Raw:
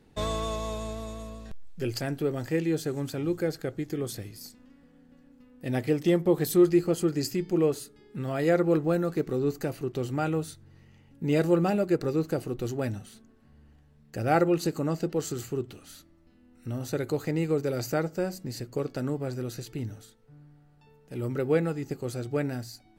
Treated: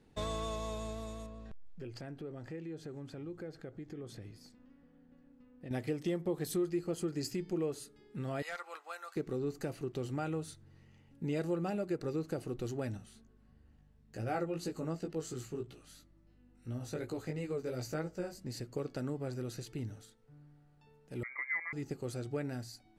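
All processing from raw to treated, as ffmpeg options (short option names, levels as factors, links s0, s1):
-filter_complex "[0:a]asettb=1/sr,asplit=3[s0][s1][s2];[s0]atrim=end=1.264[s3];[s1]atrim=start=1.26:end=5.71,asetpts=PTS-STARTPTS,afade=t=in:d=0.004:c=qsin,afade=t=out:st=4.446:d=0.004:c=qsin,aemphasis=mode=reproduction:type=75kf,acompressor=threshold=0.0126:ratio=3:attack=3.2:release=140:knee=1:detection=peak[s4];[s2]atrim=start=5.706[s5];[s3][s4]acrossfade=d=0.004:c1=hsin:c2=qsin[s6];[s6][s5]acrossfade=d=0.004:c1=qsin:c2=hsin,asettb=1/sr,asplit=3[s7][s8][s9];[s7]atrim=end=8.424[s10];[s8]atrim=start=8.42:end=9.16,asetpts=PTS-STARTPTS,afade=t=in:d=0.004:c=qsin,afade=t=out:st=0.736:d=0.004:c=qsin,highpass=f=900:w=0.5412,highpass=f=900:w=1.3066,bandreject=f=1700:w=20,asoftclip=type=hard:threshold=0.0376[s11];[s9]atrim=start=9.156[s12];[s10][s11]acrossfade=d=0.004:c1=hsin:c2=qsin[s13];[s13][s12]acrossfade=d=0.004:c1=qsin:c2=hsin,asettb=1/sr,asplit=3[s14][s15][s16];[s14]atrim=end=12.974[s17];[s15]atrim=start=12.97:end=18.46,asetpts=PTS-STARTPTS,afade=t=in:d=0.004:c=qsin,afade=t=out:st=5.486:d=0.004:c=qsin,flanger=delay=16:depth=3.1:speed=2.9,aeval=exprs='val(0)+0.00112*(sin(2*PI*50*n/s)+sin(2*PI*2*50*n/s)/2+sin(2*PI*3*50*n/s)/3+sin(2*PI*4*50*n/s)/4+sin(2*PI*5*50*n/s)/5)':c=same[s18];[s16]atrim=start=18.456[s19];[s17][s18]acrossfade=d=0.004:c1=hsin:c2=qsin[s20];[s20][s19]acrossfade=d=0.004:c1=qsin:c2=hsin,asettb=1/sr,asplit=3[s21][s22][s23];[s21]atrim=end=21.234[s24];[s22]atrim=start=21.23:end=21.73,asetpts=PTS-STARTPTS,afade=t=in:d=0.004:c=qsin,afade=t=out:st=0.496:d=0.004:c=qsin,highpass=720,tiltshelf=f=1100:g=8,lowpass=f=2100:t=q:w=0.5098,lowpass=f=2100:t=q:w=0.6013,lowpass=f=2100:t=q:w=0.9,lowpass=f=2100:t=q:w=2.563,afreqshift=-2500[s25];[s23]atrim=start=21.726[s26];[s24][s25]acrossfade=d=0.004:c1=hsin:c2=qsin[s27];[s27][s26]acrossfade=d=0.004:c1=qsin:c2=hsin,lowpass=f=12000:w=0.5412,lowpass=f=12000:w=1.3066,acompressor=threshold=0.0398:ratio=2.5,volume=0.531"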